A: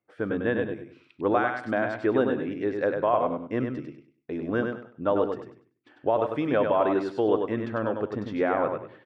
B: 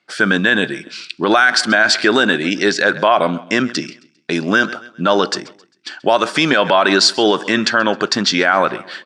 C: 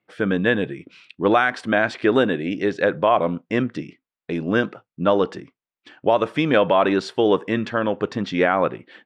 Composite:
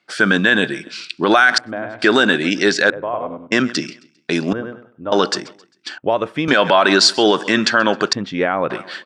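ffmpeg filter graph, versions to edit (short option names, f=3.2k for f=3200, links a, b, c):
-filter_complex "[0:a]asplit=3[a][b][c];[2:a]asplit=2[d][e];[1:a]asplit=6[f][g][h][i][j][k];[f]atrim=end=1.582[l];[a]atrim=start=1.578:end=2.022[m];[g]atrim=start=2.018:end=2.902[n];[b]atrim=start=2.898:end=3.522[o];[h]atrim=start=3.518:end=4.532[p];[c]atrim=start=4.528:end=5.122[q];[i]atrim=start=5.118:end=5.982[r];[d]atrim=start=5.978:end=6.482[s];[j]atrim=start=6.478:end=8.132[t];[e]atrim=start=8.128:end=8.702[u];[k]atrim=start=8.698[v];[l][m]acrossfade=d=0.004:c1=hsin:c2=hsin[w];[w][n]acrossfade=d=0.004:c1=hsin:c2=hsin[x];[x][o]acrossfade=d=0.004:c1=hsin:c2=hsin[y];[y][p]acrossfade=d=0.004:c1=hsin:c2=hsin[z];[z][q]acrossfade=d=0.004:c1=hsin:c2=hsin[aa];[aa][r]acrossfade=d=0.004:c1=hsin:c2=hsin[ab];[ab][s]acrossfade=d=0.004:c1=hsin:c2=hsin[ac];[ac][t]acrossfade=d=0.004:c1=hsin:c2=hsin[ad];[ad][u]acrossfade=d=0.004:c1=hsin:c2=hsin[ae];[ae][v]acrossfade=d=0.004:c1=hsin:c2=hsin"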